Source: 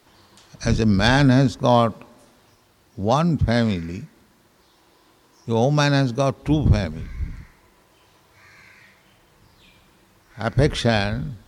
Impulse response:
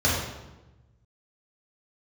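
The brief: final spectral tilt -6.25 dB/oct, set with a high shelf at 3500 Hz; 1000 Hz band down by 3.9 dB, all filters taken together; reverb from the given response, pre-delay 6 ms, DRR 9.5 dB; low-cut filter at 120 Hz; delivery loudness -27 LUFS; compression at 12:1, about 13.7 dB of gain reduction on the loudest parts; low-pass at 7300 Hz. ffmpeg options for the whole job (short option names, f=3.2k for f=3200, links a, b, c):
-filter_complex "[0:a]highpass=120,lowpass=7.3k,equalizer=f=1k:t=o:g=-5,highshelf=f=3.5k:g=-3.5,acompressor=threshold=-27dB:ratio=12,asplit=2[a][b];[1:a]atrim=start_sample=2205,adelay=6[c];[b][c]afir=irnorm=-1:irlink=0,volume=-25.5dB[d];[a][d]amix=inputs=2:normalize=0,volume=5dB"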